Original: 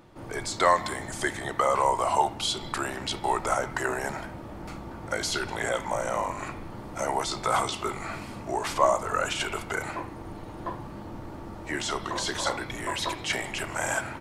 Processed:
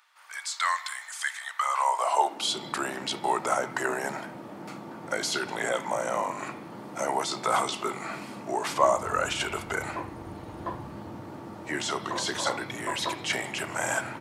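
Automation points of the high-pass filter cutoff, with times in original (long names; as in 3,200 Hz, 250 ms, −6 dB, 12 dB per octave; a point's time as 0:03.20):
high-pass filter 24 dB per octave
0:01.56 1,200 Hz
0:02.12 470 Hz
0:02.58 150 Hz
0:08.66 150 Hz
0:09.16 53 Hz
0:10.80 53 Hz
0:11.28 110 Hz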